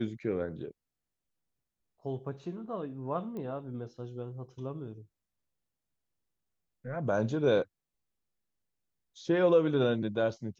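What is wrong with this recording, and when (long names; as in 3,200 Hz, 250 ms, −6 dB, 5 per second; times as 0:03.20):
0:03.37: click −30 dBFS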